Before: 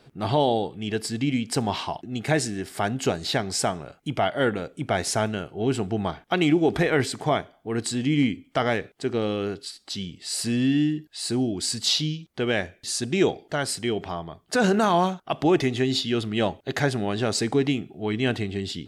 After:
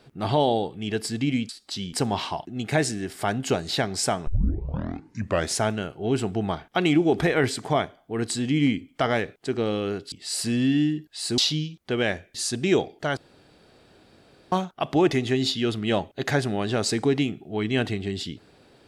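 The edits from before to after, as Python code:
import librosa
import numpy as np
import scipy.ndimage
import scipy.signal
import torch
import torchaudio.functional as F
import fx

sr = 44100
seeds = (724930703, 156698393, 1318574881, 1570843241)

y = fx.edit(x, sr, fx.tape_start(start_s=3.83, length_s=1.28),
    fx.move(start_s=9.68, length_s=0.44, to_s=1.49),
    fx.cut(start_s=11.38, length_s=0.49),
    fx.room_tone_fill(start_s=13.66, length_s=1.35), tone=tone)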